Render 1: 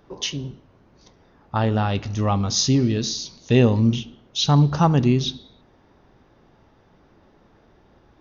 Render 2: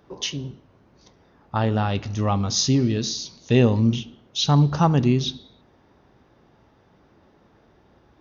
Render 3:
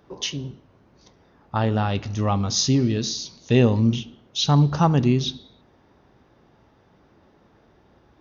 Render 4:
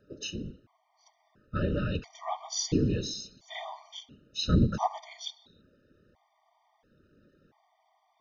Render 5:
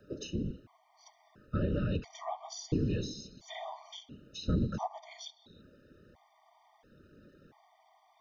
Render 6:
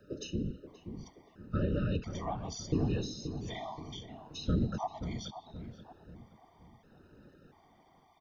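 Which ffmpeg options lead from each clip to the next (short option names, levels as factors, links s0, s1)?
-af "highpass=46,volume=0.891"
-af anull
-af "afftfilt=real='hypot(re,im)*cos(2*PI*random(0))':imag='hypot(re,im)*sin(2*PI*random(1))':win_size=512:overlap=0.75,afftfilt=real='re*gt(sin(2*PI*0.73*pts/sr)*(1-2*mod(floor(b*sr/1024/610),2)),0)':imag='im*gt(sin(2*PI*0.73*pts/sr)*(1-2*mod(floor(b*sr/1024/610),2)),0)':win_size=1024:overlap=0.75"
-filter_complex "[0:a]acrossover=split=210|620[s0][s1][s2];[s0]acompressor=threshold=0.0158:ratio=4[s3];[s1]acompressor=threshold=0.01:ratio=4[s4];[s2]acompressor=threshold=0.00282:ratio=4[s5];[s3][s4][s5]amix=inputs=3:normalize=0,volume=1.68"
-filter_complex "[0:a]asplit=2[s0][s1];[s1]adelay=528,lowpass=f=1100:p=1,volume=0.355,asplit=2[s2][s3];[s3]adelay=528,lowpass=f=1100:p=1,volume=0.46,asplit=2[s4][s5];[s5]adelay=528,lowpass=f=1100:p=1,volume=0.46,asplit=2[s6][s7];[s7]adelay=528,lowpass=f=1100:p=1,volume=0.46,asplit=2[s8][s9];[s9]adelay=528,lowpass=f=1100:p=1,volume=0.46[s10];[s0][s2][s4][s6][s8][s10]amix=inputs=6:normalize=0"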